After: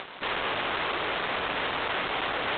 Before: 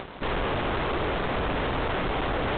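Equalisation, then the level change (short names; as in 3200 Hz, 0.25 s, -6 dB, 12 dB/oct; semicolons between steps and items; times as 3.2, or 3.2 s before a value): LPF 3800 Hz 6 dB/oct; air absorption 52 m; tilt +4.5 dB/oct; 0.0 dB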